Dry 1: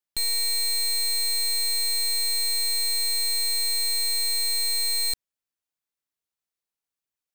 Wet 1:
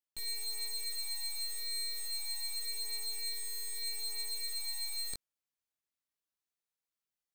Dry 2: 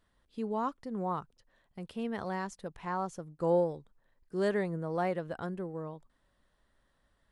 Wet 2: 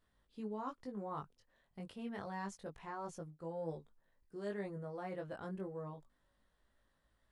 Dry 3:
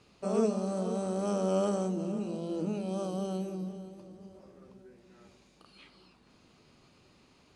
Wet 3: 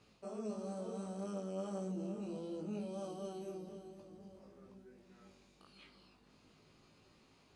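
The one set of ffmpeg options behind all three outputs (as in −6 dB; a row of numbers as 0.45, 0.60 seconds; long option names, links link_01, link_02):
-af "areverse,acompressor=threshold=-34dB:ratio=16,areverse,flanger=delay=18.5:depth=2.3:speed=0.28,volume=-1.5dB"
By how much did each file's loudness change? −14.0, −10.5, −11.0 LU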